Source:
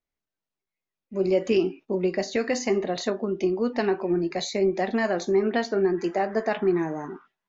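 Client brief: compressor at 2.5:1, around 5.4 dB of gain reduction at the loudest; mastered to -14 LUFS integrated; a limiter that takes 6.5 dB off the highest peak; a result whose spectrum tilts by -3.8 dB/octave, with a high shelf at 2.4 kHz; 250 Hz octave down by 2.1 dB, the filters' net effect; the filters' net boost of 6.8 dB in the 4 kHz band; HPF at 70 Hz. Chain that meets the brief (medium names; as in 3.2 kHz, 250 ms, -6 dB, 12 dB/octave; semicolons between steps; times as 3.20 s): high-pass 70 Hz; peaking EQ 250 Hz -3.5 dB; treble shelf 2.4 kHz +4.5 dB; peaking EQ 4 kHz +4 dB; compression 2.5:1, threshold -27 dBFS; trim +17.5 dB; peak limiter -3.5 dBFS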